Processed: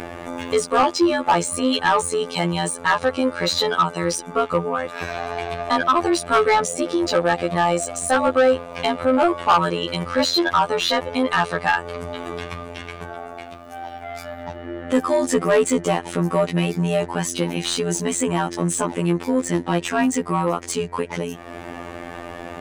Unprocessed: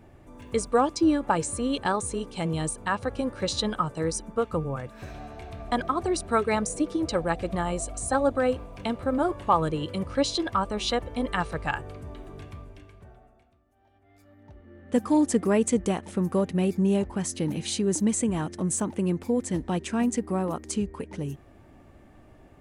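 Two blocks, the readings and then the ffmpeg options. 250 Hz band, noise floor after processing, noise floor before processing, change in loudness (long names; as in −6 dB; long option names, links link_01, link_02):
+3.0 dB, −37 dBFS, −55 dBFS, +6.5 dB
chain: -filter_complex "[0:a]afftfilt=real='hypot(re,im)*cos(PI*b)':imag='0':win_size=2048:overlap=0.75,acompressor=mode=upward:threshold=-29dB:ratio=2.5,asplit=2[link_01][link_02];[link_02]highpass=frequency=720:poles=1,volume=22dB,asoftclip=type=tanh:threshold=-7dB[link_03];[link_01][link_03]amix=inputs=2:normalize=0,lowpass=frequency=5000:poles=1,volume=-6dB,volume=2dB"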